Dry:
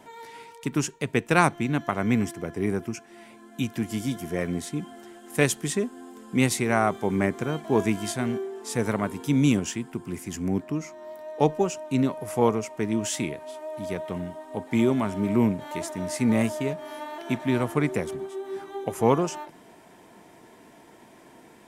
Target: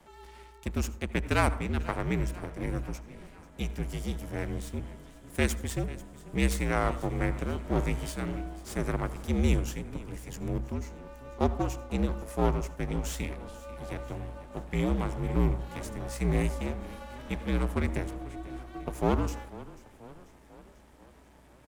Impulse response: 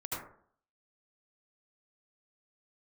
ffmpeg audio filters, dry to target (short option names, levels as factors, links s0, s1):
-filter_complex "[0:a]lowshelf=f=150:g=7,aeval=exprs='max(val(0),0)':c=same,asplit=6[s0][s1][s2][s3][s4][s5];[s1]adelay=491,afreqshift=35,volume=0.119[s6];[s2]adelay=982,afreqshift=70,volume=0.0676[s7];[s3]adelay=1473,afreqshift=105,volume=0.0385[s8];[s4]adelay=1964,afreqshift=140,volume=0.0221[s9];[s5]adelay=2455,afreqshift=175,volume=0.0126[s10];[s0][s6][s7][s8][s9][s10]amix=inputs=6:normalize=0,asplit=2[s11][s12];[1:a]atrim=start_sample=2205[s13];[s12][s13]afir=irnorm=-1:irlink=0,volume=0.15[s14];[s11][s14]amix=inputs=2:normalize=0,afreqshift=-61,volume=0.562"